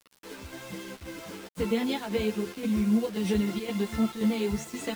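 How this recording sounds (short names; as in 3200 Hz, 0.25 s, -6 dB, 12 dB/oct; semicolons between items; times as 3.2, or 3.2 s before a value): chopped level 1.9 Hz, depth 60%, duty 80%; a quantiser's noise floor 8-bit, dither none; a shimmering, thickened sound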